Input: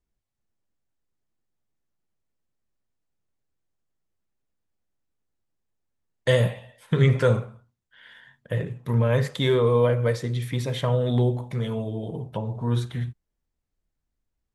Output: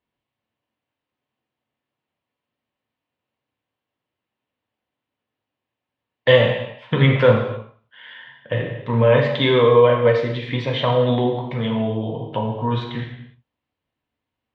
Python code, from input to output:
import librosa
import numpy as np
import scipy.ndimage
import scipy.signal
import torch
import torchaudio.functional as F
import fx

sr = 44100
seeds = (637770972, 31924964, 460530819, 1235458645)

y = fx.cabinet(x, sr, low_hz=160.0, low_slope=12, high_hz=3600.0, hz=(190.0, 380.0, 990.0, 1400.0, 2900.0), db=(-8, -5, 3, -4, 4))
y = fx.rev_gated(y, sr, seeds[0], gate_ms=320, shape='falling', drr_db=1.5)
y = y * 10.0 ** (7.0 / 20.0)